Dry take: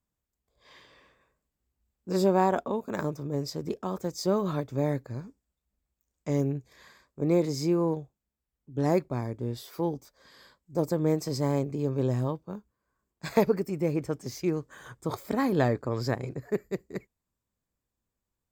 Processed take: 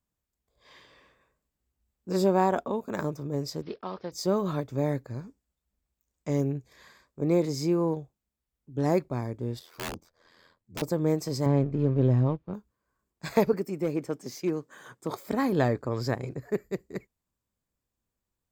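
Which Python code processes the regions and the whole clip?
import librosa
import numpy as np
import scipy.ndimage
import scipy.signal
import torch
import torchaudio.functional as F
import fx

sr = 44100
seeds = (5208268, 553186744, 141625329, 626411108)

y = fx.chain(x, sr, fx.block_float(bits=5),
    fx.steep_lowpass(hz=5100.0, slope=72),
    fx.low_shelf(hz=380.0, db=-9.5), at=(3.62, 4.12))
y = fx.chain(y, sr, fx.high_shelf(hz=5100.0, db=-9.5),
    fx.ring_mod(carrier_hz=42.0),
    fx.overflow_wrap(gain_db=28.5), at=(9.59, 10.82))
y = fx.chain(y, sr, fx.law_mismatch(coded='A'),
    fx.lowpass(hz=3400.0, slope=12),
    fx.low_shelf(hz=260.0, db=9.0), at=(11.46, 12.54))
y = fx.chain(y, sr, fx.cheby1_highpass(hz=210.0, order=2),
    fx.overload_stage(gain_db=20.0), at=(13.53, 15.27))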